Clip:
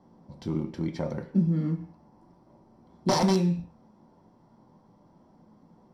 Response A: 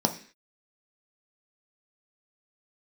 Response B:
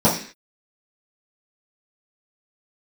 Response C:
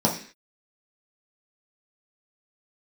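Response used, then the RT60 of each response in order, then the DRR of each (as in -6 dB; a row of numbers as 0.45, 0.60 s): A; 0.45, 0.45, 0.45 s; 4.0, -11.0, -3.5 dB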